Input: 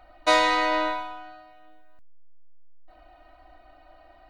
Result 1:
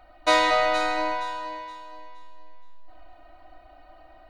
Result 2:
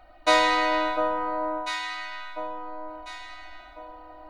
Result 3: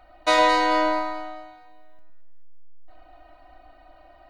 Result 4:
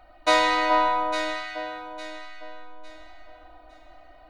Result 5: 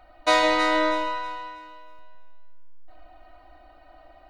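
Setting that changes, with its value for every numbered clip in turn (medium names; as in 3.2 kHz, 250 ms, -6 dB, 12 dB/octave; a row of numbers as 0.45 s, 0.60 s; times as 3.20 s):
echo whose repeats swap between lows and highs, time: 235 ms, 698 ms, 109 ms, 428 ms, 160 ms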